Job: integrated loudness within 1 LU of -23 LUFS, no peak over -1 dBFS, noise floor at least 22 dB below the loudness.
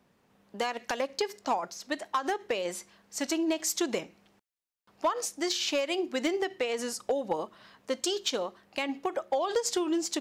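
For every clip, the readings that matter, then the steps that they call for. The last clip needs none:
clipped samples 0.3%; clipping level -20.0 dBFS; loudness -31.5 LUFS; peak level -20.0 dBFS; loudness target -23.0 LUFS
-> clip repair -20 dBFS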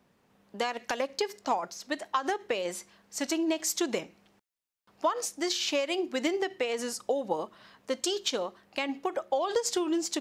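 clipped samples 0.0%; loudness -31.0 LUFS; peak level -15.0 dBFS; loudness target -23.0 LUFS
-> trim +8 dB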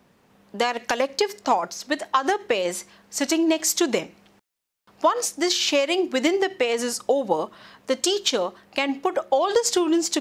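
loudness -23.0 LUFS; peak level -7.0 dBFS; noise floor -61 dBFS

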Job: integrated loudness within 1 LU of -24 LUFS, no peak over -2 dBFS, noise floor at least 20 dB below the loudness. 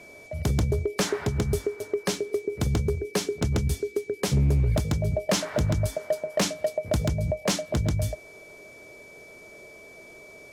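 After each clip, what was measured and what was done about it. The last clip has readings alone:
clipped samples 1.0%; clipping level -17.0 dBFS; steady tone 2.3 kHz; tone level -47 dBFS; loudness -27.0 LUFS; peak level -17.0 dBFS; loudness target -24.0 LUFS
-> clip repair -17 dBFS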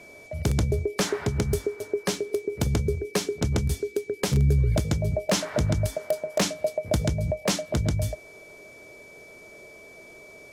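clipped samples 0.0%; steady tone 2.3 kHz; tone level -47 dBFS
-> band-stop 2.3 kHz, Q 30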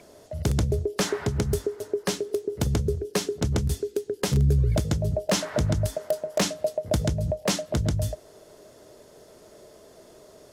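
steady tone not found; loudness -26.5 LUFS; peak level -8.0 dBFS; loudness target -24.0 LUFS
-> trim +2.5 dB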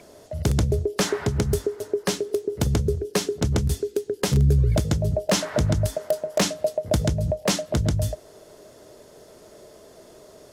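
loudness -24.0 LUFS; peak level -5.5 dBFS; noise floor -50 dBFS

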